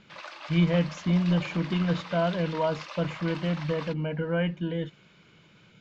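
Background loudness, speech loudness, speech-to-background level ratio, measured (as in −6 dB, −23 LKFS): −41.0 LKFS, −28.0 LKFS, 13.0 dB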